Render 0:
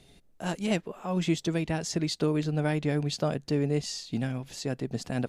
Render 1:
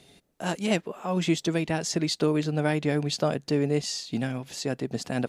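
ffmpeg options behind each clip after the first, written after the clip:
-af "highpass=f=180:p=1,volume=4dB"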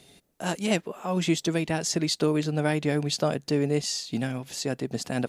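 -af "highshelf=f=7.3k:g=6"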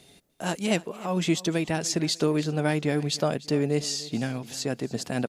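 -af "aecho=1:1:298|596|894:0.112|0.0393|0.0137"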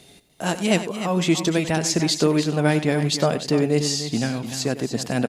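-af "aecho=1:1:95|297:0.211|0.299,volume=5dB"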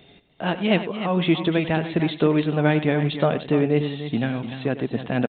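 -af "aresample=8000,aresample=44100"

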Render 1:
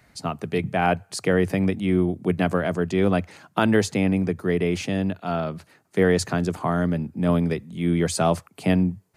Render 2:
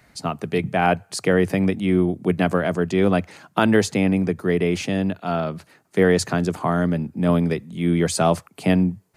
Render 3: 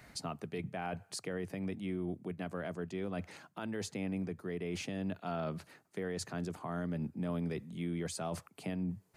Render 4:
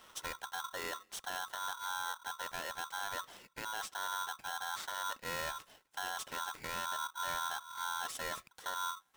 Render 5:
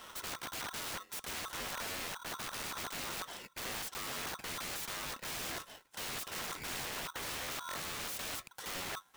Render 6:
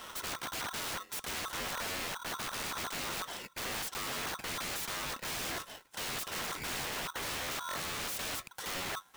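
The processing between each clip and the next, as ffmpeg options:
-af "equalizer=f=87:w=1.7:g=-3.5,volume=2.5dB"
-af "areverse,acompressor=threshold=-26dB:ratio=6,areverse,alimiter=level_in=3dB:limit=-24dB:level=0:latency=1:release=474,volume=-3dB,volume=-1.5dB"
-af "aeval=exprs='val(0)*sgn(sin(2*PI*1200*n/s))':c=same,volume=-2dB"
-af "aeval=exprs='(mod(150*val(0)+1,2)-1)/150':c=same,acrusher=bits=4:mode=log:mix=0:aa=0.000001,volume=7.5dB"
-af "asoftclip=type=hard:threshold=-39.5dB,volume=4.5dB"

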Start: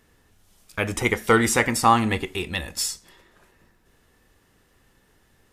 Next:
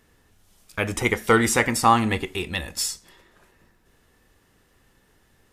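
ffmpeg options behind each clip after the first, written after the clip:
-af anull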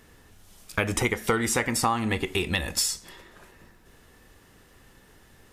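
-af "acompressor=threshold=-28dB:ratio=6,volume=6dB"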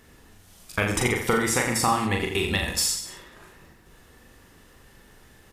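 -af "aecho=1:1:40|84|132.4|185.6|244.2:0.631|0.398|0.251|0.158|0.1"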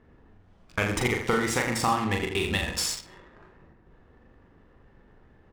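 -af "adynamicsmooth=sensitivity=7.5:basefreq=1.3k,volume=-2dB"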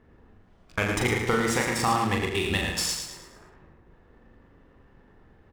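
-af "aecho=1:1:110|220|330|440|550:0.473|0.189|0.0757|0.0303|0.0121"

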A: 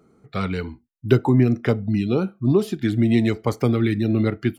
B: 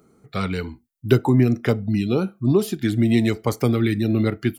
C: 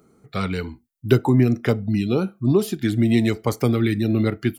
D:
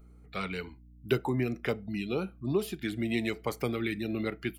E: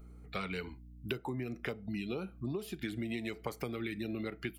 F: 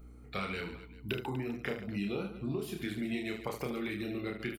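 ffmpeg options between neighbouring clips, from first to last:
-af "highshelf=f=6.6k:g=11.5"
-af anull
-af "aeval=exprs='val(0)+0.00891*(sin(2*PI*60*n/s)+sin(2*PI*2*60*n/s)/2+sin(2*PI*3*60*n/s)/3+sin(2*PI*4*60*n/s)/4+sin(2*PI*5*60*n/s)/5)':c=same,equalizer=f=100:t=o:w=0.67:g=-12,equalizer=f=250:t=o:w=0.67:g=-5,equalizer=f=2.5k:t=o:w=0.67:g=6,equalizer=f=6.3k:t=o:w=0.67:g=-4,volume=-8.5dB"
-af "acompressor=threshold=-36dB:ratio=10,volume=2dB"
-af "aecho=1:1:30|75|142.5|243.8|395.6:0.631|0.398|0.251|0.158|0.1"

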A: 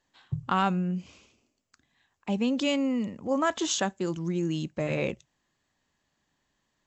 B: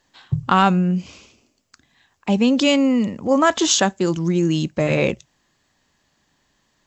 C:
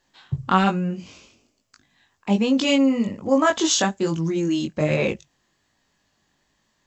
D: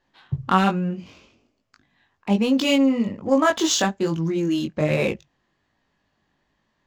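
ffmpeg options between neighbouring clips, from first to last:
-af "equalizer=f=5k:w=1.9:g=3,acontrast=57,volume=4dB"
-af "flanger=delay=18.5:depth=3.8:speed=1.2"
-af "adynamicsmooth=sensitivity=8:basefreq=3.6k"

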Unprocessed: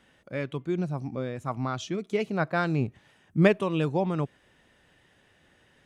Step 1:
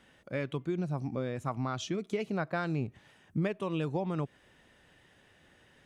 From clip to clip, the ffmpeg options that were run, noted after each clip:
-af "acompressor=threshold=-29dB:ratio=5"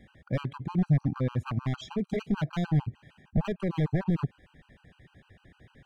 -af "aeval=exprs='0.0355*(abs(mod(val(0)/0.0355+3,4)-2)-1)':c=same,bass=f=250:g=11,treble=f=4k:g=-9,afftfilt=real='re*gt(sin(2*PI*6.6*pts/sr)*(1-2*mod(floor(b*sr/1024/800),2)),0)':imag='im*gt(sin(2*PI*6.6*pts/sr)*(1-2*mod(floor(b*sr/1024/800),2)),0)':win_size=1024:overlap=0.75,volume=4dB"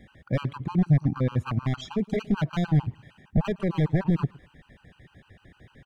-af "aecho=1:1:114|228:0.0708|0.012,volume=3.5dB"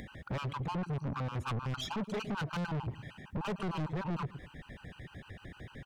-af "alimiter=limit=-20dB:level=0:latency=1:release=163,acompressor=mode=upward:threshold=-48dB:ratio=2.5,asoftclip=type=tanh:threshold=-37dB,volume=4.5dB"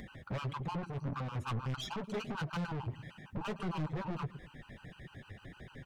-af "flanger=delay=4.8:depth=5.1:regen=-31:speed=1.6:shape=triangular,volume=1.5dB"

